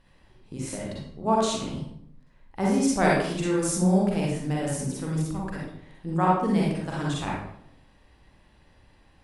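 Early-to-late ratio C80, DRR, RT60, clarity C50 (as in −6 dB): 3.5 dB, −5.0 dB, 0.70 s, −1.5 dB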